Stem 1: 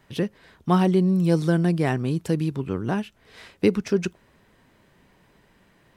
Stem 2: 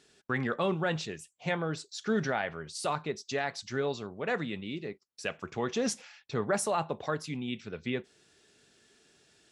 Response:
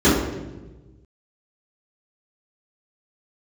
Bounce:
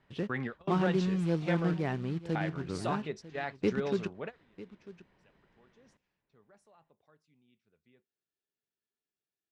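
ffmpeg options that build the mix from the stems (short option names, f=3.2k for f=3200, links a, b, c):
-filter_complex "[0:a]acrusher=bits=4:mode=log:mix=0:aa=0.000001,lowpass=3.7k,volume=-10dB,asplit=3[a][b][c];[b]volume=-17.5dB[d];[1:a]lowpass=f=3.9k:p=1,volume=-3.5dB,asplit=3[e][f][g];[e]atrim=end=1.74,asetpts=PTS-STARTPTS,afade=t=out:st=1.736:d=0.004:c=hsin[h];[f]atrim=start=1.74:end=2.35,asetpts=PTS-STARTPTS,volume=0[i];[g]atrim=start=2.35,asetpts=PTS-STARTPTS,afade=t=in:d=0.004:c=hsin[j];[h][i][j]concat=n=3:v=0:a=1[k];[c]apad=whole_len=419750[l];[k][l]sidechaingate=range=-30dB:threshold=-59dB:ratio=16:detection=peak[m];[d]aecho=0:1:947:1[n];[a][m][n]amix=inputs=3:normalize=0"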